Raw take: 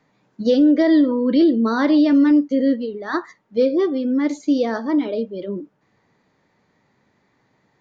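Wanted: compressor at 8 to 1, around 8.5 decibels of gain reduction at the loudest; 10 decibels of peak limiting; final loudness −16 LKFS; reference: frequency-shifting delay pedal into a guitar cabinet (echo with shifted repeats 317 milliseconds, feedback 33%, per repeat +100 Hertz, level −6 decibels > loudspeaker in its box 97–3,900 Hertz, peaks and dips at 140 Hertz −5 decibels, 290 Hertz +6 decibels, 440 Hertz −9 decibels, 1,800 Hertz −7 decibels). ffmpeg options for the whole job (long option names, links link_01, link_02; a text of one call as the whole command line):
ffmpeg -i in.wav -filter_complex "[0:a]acompressor=threshold=-20dB:ratio=8,alimiter=limit=-22.5dB:level=0:latency=1,asplit=5[link_01][link_02][link_03][link_04][link_05];[link_02]adelay=317,afreqshift=100,volume=-6dB[link_06];[link_03]adelay=634,afreqshift=200,volume=-15.6dB[link_07];[link_04]adelay=951,afreqshift=300,volume=-25.3dB[link_08];[link_05]adelay=1268,afreqshift=400,volume=-34.9dB[link_09];[link_01][link_06][link_07][link_08][link_09]amix=inputs=5:normalize=0,highpass=97,equalizer=frequency=140:width_type=q:width=4:gain=-5,equalizer=frequency=290:width_type=q:width=4:gain=6,equalizer=frequency=440:width_type=q:width=4:gain=-9,equalizer=frequency=1800:width_type=q:width=4:gain=-7,lowpass=frequency=3900:width=0.5412,lowpass=frequency=3900:width=1.3066,volume=11dB" out.wav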